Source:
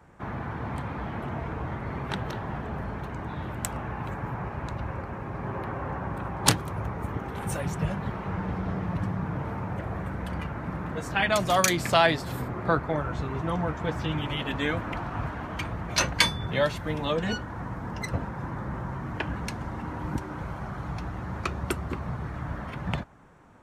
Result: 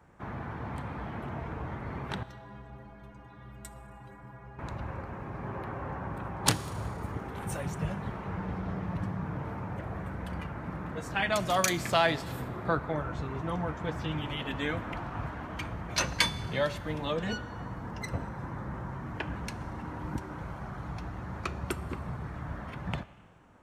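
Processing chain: 2.23–4.59 metallic resonator 60 Hz, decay 0.61 s, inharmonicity 0.03; Schroeder reverb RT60 1.6 s, combs from 26 ms, DRR 16.5 dB; gain -4.5 dB

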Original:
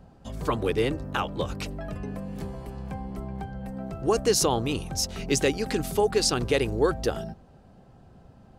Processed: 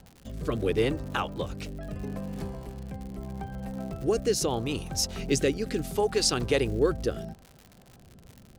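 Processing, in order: rotary speaker horn 0.75 Hz; crackle 110/s -38 dBFS

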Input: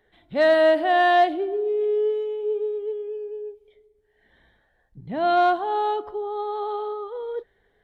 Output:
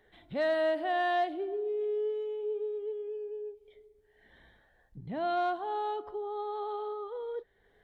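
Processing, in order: compressor 1.5:1, threshold -48 dBFS, peak gain reduction 12 dB

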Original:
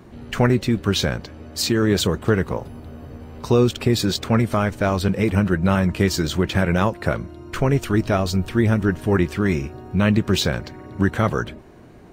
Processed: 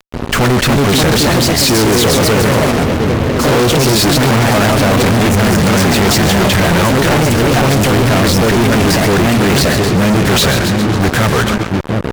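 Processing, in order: echoes that change speed 0.332 s, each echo +2 st, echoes 3; split-band echo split 580 Hz, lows 0.715 s, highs 0.136 s, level -13.5 dB; fuzz box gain 37 dB, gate -35 dBFS; gain +4 dB

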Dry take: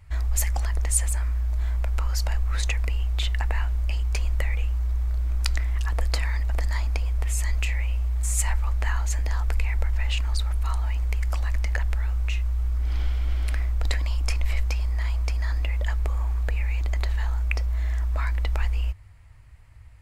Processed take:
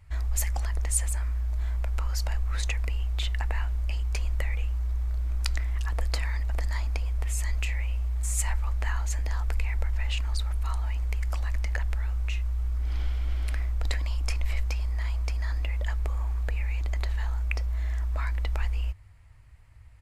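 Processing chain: downsampling 32000 Hz; gain -3.5 dB

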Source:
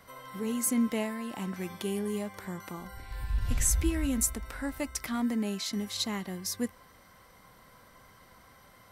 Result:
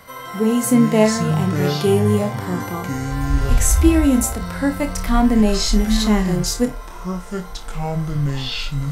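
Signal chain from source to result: echoes that change speed 0.13 s, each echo -7 st, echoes 2, each echo -6 dB; dynamic EQ 600 Hz, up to +5 dB, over -45 dBFS, Q 0.86; harmonic-percussive split harmonic +9 dB; flutter echo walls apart 4.8 m, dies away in 0.2 s; gain +4.5 dB

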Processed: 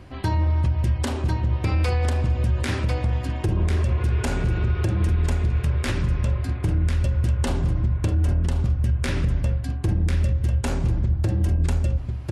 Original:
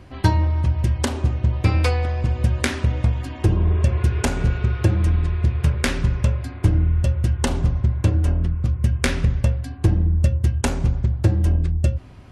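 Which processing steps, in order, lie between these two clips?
notch 6100 Hz, Q 28; echo 1.045 s -8.5 dB; limiter -14 dBFS, peak gain reduction 10 dB

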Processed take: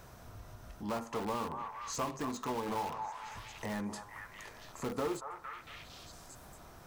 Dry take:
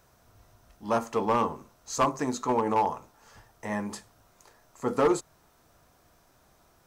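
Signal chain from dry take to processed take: in parallel at -5 dB: wrapped overs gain 26 dB; on the sum: tone controls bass +3 dB, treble -3 dB; on a send: delay with a stepping band-pass 0.229 s, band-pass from 1000 Hz, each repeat 0.7 oct, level -6.5 dB; on the sum: compressor 2:1, threshold -51 dBFS, peak gain reduction 17.5 dB; gain +4 dB

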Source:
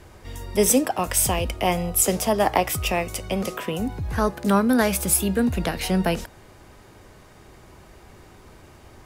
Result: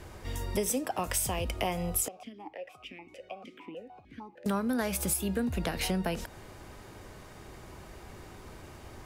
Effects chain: compressor 6:1, threshold -28 dBFS, peak gain reduction 14 dB; 2.08–4.46 vowel sequencer 6.6 Hz

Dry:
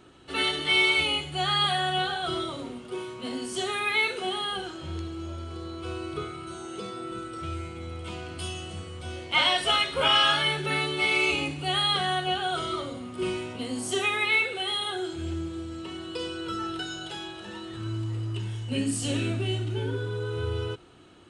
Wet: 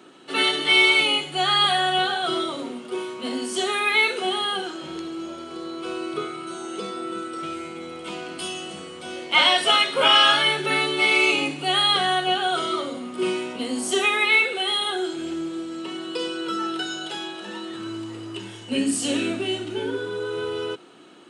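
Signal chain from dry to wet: HPF 190 Hz 24 dB/oct; gain +5.5 dB

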